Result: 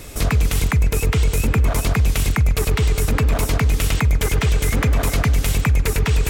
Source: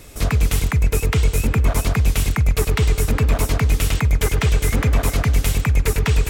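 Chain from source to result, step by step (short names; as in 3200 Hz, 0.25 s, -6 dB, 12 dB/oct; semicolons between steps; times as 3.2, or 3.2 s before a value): limiter -15.5 dBFS, peak gain reduction 9 dB; gain +5.5 dB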